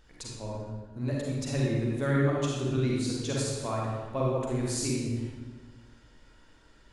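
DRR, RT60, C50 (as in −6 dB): −4.0 dB, 1.4 s, −2.5 dB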